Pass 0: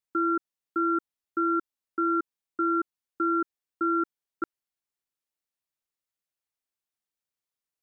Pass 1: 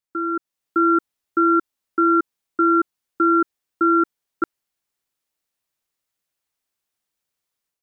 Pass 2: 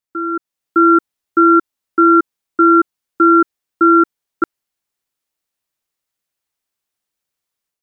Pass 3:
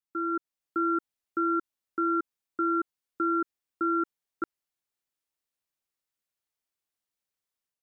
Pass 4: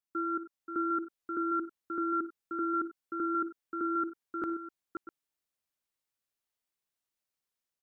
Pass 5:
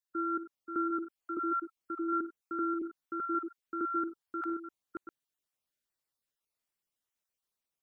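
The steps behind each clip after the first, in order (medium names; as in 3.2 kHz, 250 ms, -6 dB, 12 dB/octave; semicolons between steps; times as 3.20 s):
level rider gain up to 9 dB
upward expansion 1.5:1, over -28 dBFS; trim +7 dB
peak limiter -11 dBFS, peak gain reduction 8.5 dB; trim -9 dB
multi-tap echo 58/82/97/531/651 ms -16/-19.5/-18.5/-7.5/-15 dB; trim -2 dB
random holes in the spectrogram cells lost 23%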